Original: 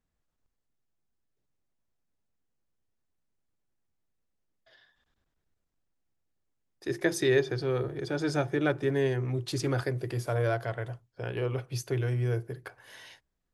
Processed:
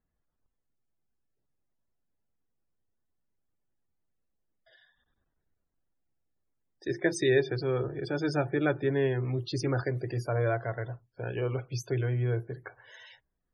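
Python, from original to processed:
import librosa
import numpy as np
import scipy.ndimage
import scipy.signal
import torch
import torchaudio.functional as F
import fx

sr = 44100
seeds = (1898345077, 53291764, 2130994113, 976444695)

y = fx.mod_noise(x, sr, seeds[0], snr_db=31)
y = fx.spec_topn(y, sr, count=64)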